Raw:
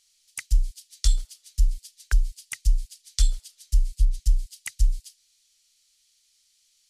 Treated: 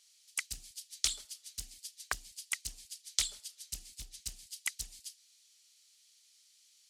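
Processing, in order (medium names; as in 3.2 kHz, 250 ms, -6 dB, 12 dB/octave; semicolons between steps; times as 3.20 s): high-pass 260 Hz 12 dB/octave; loudspeaker Doppler distortion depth 0.85 ms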